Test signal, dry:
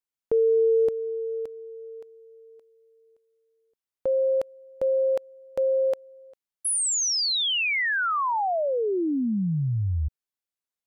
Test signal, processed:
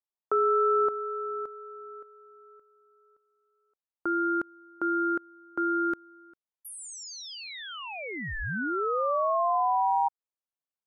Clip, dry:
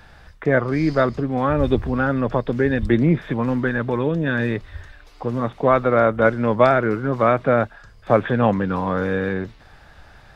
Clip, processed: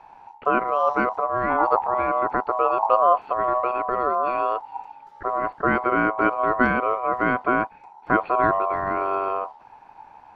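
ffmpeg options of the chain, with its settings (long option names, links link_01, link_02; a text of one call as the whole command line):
ffmpeg -i in.wav -af "tiltshelf=frequency=890:gain=9,aeval=exprs='val(0)*sin(2*PI*870*n/s)':channel_layout=same,volume=-5.5dB" out.wav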